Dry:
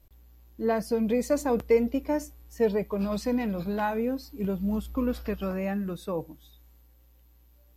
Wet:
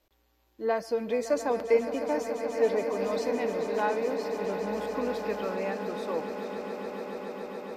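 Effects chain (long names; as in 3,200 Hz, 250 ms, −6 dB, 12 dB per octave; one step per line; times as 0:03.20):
three-way crossover with the lows and the highs turned down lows −18 dB, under 310 Hz, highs −12 dB, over 7,000 Hz
on a send: echo that builds up and dies away 141 ms, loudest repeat 8, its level −13 dB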